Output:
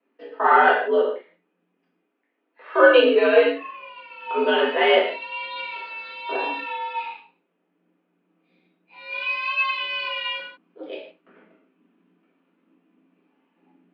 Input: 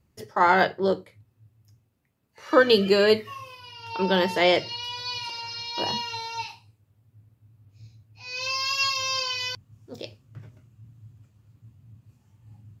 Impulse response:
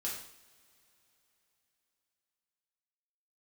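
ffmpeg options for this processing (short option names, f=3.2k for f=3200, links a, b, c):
-filter_complex "[1:a]atrim=start_sample=2205,afade=t=out:st=0.21:d=0.01,atrim=end_sample=9702[a];[0:a][a]afir=irnorm=-1:irlink=0,highpass=f=220:t=q:w=0.5412,highpass=f=220:t=q:w=1.307,lowpass=f=3.2k:t=q:w=0.5176,lowpass=f=3.2k:t=q:w=0.7071,lowpass=f=3.2k:t=q:w=1.932,afreqshift=87,asetrate=40517,aresample=44100,volume=3dB"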